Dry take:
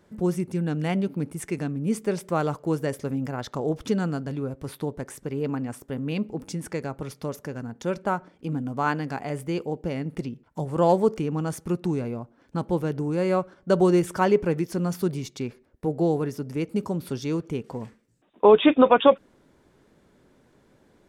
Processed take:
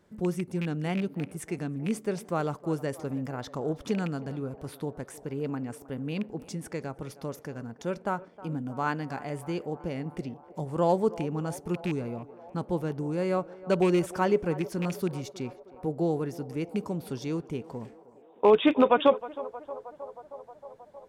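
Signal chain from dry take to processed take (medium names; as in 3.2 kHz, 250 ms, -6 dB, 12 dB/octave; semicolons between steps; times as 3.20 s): rattle on loud lows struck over -24 dBFS, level -22 dBFS; on a send: band-passed feedback delay 314 ms, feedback 81%, band-pass 710 Hz, level -16 dB; on the sum: trim -4.5 dB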